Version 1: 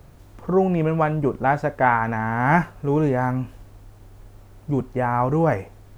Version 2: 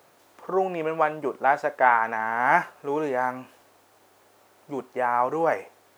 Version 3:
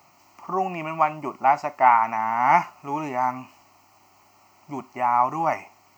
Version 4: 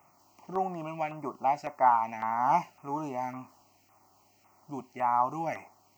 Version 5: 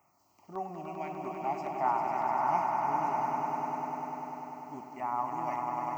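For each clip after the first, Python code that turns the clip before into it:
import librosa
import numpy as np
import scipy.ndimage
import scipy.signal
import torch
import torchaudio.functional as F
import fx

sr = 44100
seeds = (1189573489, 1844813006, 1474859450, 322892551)

y1 = scipy.signal.sosfilt(scipy.signal.butter(2, 500.0, 'highpass', fs=sr, output='sos'), x)
y2 = fx.fixed_phaser(y1, sr, hz=2400.0, stages=8)
y2 = y2 * 10.0 ** (5.0 / 20.0)
y3 = fx.filter_lfo_notch(y2, sr, shape='saw_down', hz=1.8, low_hz=950.0, high_hz=4300.0, q=0.72)
y3 = y3 * 10.0 ** (-5.0 / 20.0)
y4 = fx.echo_swell(y3, sr, ms=99, loudest=5, wet_db=-6)
y4 = y4 * 10.0 ** (-7.0 / 20.0)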